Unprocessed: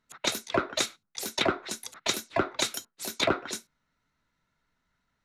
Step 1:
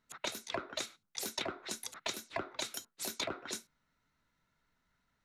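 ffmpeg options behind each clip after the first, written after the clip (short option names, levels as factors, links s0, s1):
-af "acompressor=threshold=0.0224:ratio=12,volume=0.841"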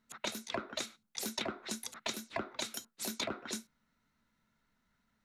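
-af "equalizer=f=220:t=o:w=0.28:g=11"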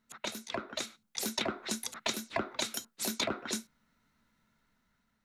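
-af "dynaudnorm=f=390:g=5:m=1.68"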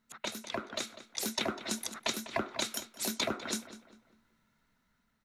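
-filter_complex "[0:a]asplit=2[s0][s1];[s1]adelay=199,lowpass=f=3100:p=1,volume=0.237,asplit=2[s2][s3];[s3]adelay=199,lowpass=f=3100:p=1,volume=0.37,asplit=2[s4][s5];[s5]adelay=199,lowpass=f=3100:p=1,volume=0.37,asplit=2[s6][s7];[s7]adelay=199,lowpass=f=3100:p=1,volume=0.37[s8];[s0][s2][s4][s6][s8]amix=inputs=5:normalize=0"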